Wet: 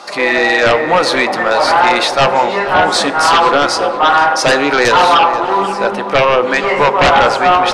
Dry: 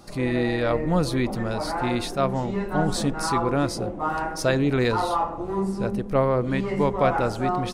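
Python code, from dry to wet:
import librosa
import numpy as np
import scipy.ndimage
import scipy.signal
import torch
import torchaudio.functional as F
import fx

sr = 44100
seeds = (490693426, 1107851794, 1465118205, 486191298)

p1 = scipy.signal.sosfilt(scipy.signal.butter(2, 800.0, 'highpass', fs=sr, output='sos'), x)
p2 = fx.high_shelf(p1, sr, hz=5500.0, db=-7.0)
p3 = fx.fold_sine(p2, sr, drive_db=14, ceiling_db=-10.0)
p4 = fx.air_absorb(p3, sr, metres=56.0)
p5 = p4 + fx.echo_filtered(p4, sr, ms=483, feedback_pct=51, hz=3000.0, wet_db=-11.5, dry=0)
p6 = fx.rev_fdn(p5, sr, rt60_s=1.5, lf_ratio=1.0, hf_ratio=0.45, size_ms=11.0, drr_db=13.5)
y = p6 * 10.0 ** (5.0 / 20.0)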